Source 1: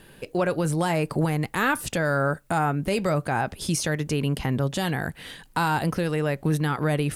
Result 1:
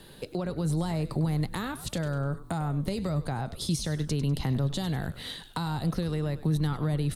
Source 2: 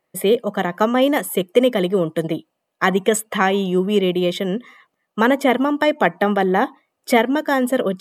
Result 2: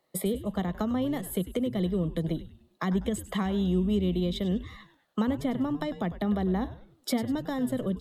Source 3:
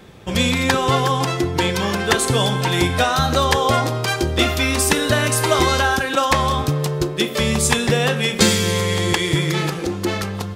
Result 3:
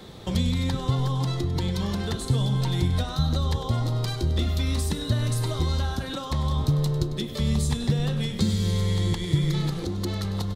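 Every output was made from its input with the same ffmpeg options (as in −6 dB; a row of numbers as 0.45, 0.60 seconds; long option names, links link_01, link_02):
-filter_complex "[0:a]equalizer=frequency=1600:width_type=o:width=0.33:gain=-5,equalizer=frequency=2500:width_type=o:width=0.33:gain=-7,equalizer=frequency=4000:width_type=o:width=0.33:gain=10,acrossover=split=200[link_01][link_02];[link_02]acompressor=threshold=-32dB:ratio=12[link_03];[link_01][link_03]amix=inputs=2:normalize=0,asplit=5[link_04][link_05][link_06][link_07][link_08];[link_05]adelay=99,afreqshift=-130,volume=-13.5dB[link_09];[link_06]adelay=198,afreqshift=-260,volume=-22.1dB[link_10];[link_07]adelay=297,afreqshift=-390,volume=-30.8dB[link_11];[link_08]adelay=396,afreqshift=-520,volume=-39.4dB[link_12];[link_04][link_09][link_10][link_11][link_12]amix=inputs=5:normalize=0"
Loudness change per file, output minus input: −5.0, −11.0, −8.0 LU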